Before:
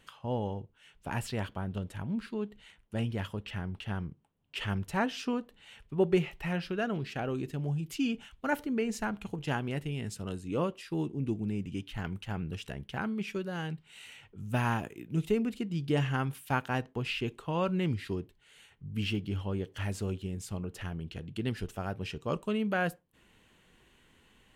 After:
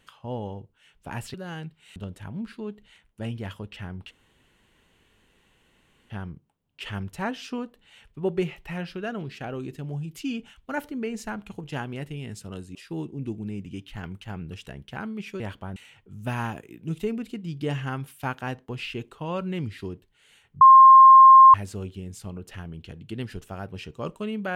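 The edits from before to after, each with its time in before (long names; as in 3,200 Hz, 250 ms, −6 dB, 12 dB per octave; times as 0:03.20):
0:01.34–0:01.70: swap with 0:13.41–0:14.03
0:03.85: splice in room tone 1.99 s
0:10.50–0:10.76: remove
0:18.88–0:19.81: beep over 1,060 Hz −7 dBFS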